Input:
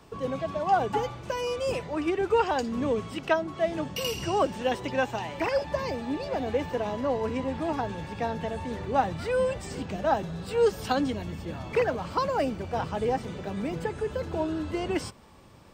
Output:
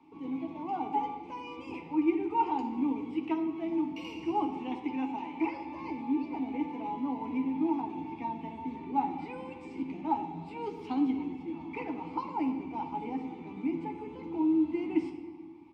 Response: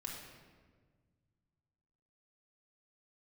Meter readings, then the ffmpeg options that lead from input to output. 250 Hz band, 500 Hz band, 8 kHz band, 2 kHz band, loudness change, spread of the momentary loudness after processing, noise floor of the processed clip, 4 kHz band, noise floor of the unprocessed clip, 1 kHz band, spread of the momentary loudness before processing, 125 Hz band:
+2.0 dB, -13.0 dB, under -20 dB, -12.5 dB, -4.5 dB, 10 LU, -46 dBFS, under -10 dB, -43 dBFS, -4.5 dB, 7 LU, -13.5 dB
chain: -filter_complex "[0:a]asplit=3[a][b][c];[a]bandpass=f=300:t=q:w=8,volume=0dB[d];[b]bandpass=f=870:t=q:w=8,volume=-6dB[e];[c]bandpass=f=2.24k:t=q:w=8,volume=-9dB[f];[d][e][f]amix=inputs=3:normalize=0,asplit=2[g][h];[h]adelay=12,volume=-7dB[i];[g][i]amix=inputs=2:normalize=0,asplit=2[j][k];[1:a]atrim=start_sample=2205[l];[k][l]afir=irnorm=-1:irlink=0,volume=2dB[m];[j][m]amix=inputs=2:normalize=0"

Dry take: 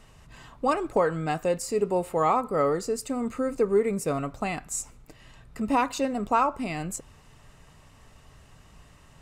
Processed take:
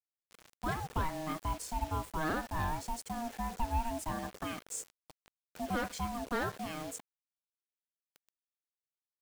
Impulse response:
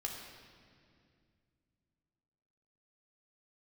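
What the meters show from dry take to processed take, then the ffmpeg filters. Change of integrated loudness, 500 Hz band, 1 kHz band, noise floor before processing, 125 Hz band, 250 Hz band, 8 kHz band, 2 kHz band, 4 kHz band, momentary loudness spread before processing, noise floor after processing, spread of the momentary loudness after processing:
-10.5 dB, -16.5 dB, -9.0 dB, -54 dBFS, -4.0 dB, -10.5 dB, -8.0 dB, -4.5 dB, -4.0 dB, 9 LU, under -85 dBFS, 7 LU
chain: -filter_complex "[0:a]aeval=exprs='val(0)*sin(2*PI*470*n/s)':c=same,acrossover=split=490|6600[a][b][c];[b]asoftclip=type=tanh:threshold=-25.5dB[d];[a][d][c]amix=inputs=3:normalize=0,agate=range=-33dB:threshold=-52dB:ratio=3:detection=peak,acrusher=bits=6:mix=0:aa=0.000001,volume=-6dB"

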